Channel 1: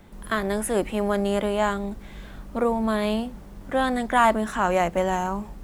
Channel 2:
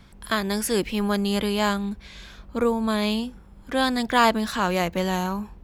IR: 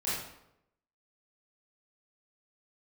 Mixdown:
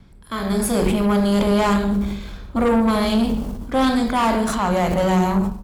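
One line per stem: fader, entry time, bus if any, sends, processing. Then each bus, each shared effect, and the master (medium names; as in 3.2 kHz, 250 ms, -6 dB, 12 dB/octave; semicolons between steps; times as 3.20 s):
-4.0 dB, 0.00 s, no send, gate -32 dBFS, range -34 dB; peaking EQ 2 kHz -8.5 dB 1.1 oct; decay stretcher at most 39 dB/s
-5.5 dB, 1.1 ms, send -12.5 dB, bass shelf 480 Hz +11.5 dB; hum notches 50/100/150/200 Hz; auto duck -11 dB, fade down 0.25 s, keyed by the first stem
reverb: on, RT60 0.80 s, pre-delay 21 ms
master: level rider gain up to 16.5 dB; valve stage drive 13 dB, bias 0.4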